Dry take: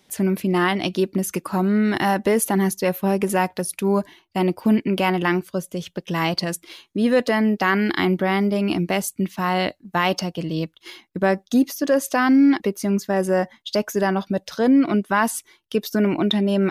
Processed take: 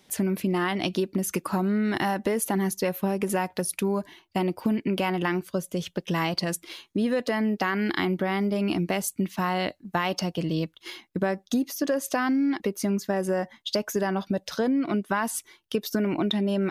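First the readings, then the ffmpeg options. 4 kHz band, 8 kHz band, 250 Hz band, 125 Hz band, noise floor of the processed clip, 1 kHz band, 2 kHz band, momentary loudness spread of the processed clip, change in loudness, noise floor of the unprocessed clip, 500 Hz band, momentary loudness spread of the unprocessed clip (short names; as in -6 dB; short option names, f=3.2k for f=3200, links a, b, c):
-4.0 dB, -3.0 dB, -6.0 dB, -5.0 dB, -64 dBFS, -6.0 dB, -6.0 dB, 5 LU, -6.0 dB, -64 dBFS, -6.0 dB, 9 LU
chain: -af "acompressor=threshold=-22dB:ratio=6"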